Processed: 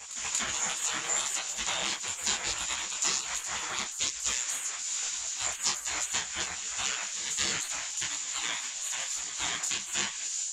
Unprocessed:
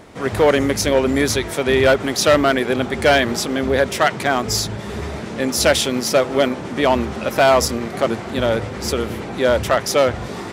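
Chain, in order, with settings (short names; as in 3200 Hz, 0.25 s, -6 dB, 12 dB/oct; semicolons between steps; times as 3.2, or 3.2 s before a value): spectral gate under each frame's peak -25 dB weak; compressor, threshold -31 dBFS, peak gain reduction 8.5 dB; synth low-pass 7000 Hz, resonance Q 12; pre-echo 0.238 s -13 dB; detuned doubles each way 41 cents; gain +4 dB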